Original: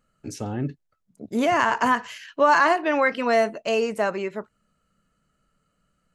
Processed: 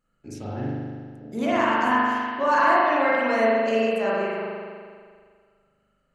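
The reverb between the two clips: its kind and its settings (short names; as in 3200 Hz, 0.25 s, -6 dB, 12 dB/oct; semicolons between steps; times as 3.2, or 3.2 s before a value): spring tank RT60 1.9 s, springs 40 ms, chirp 40 ms, DRR -7.5 dB; gain -8 dB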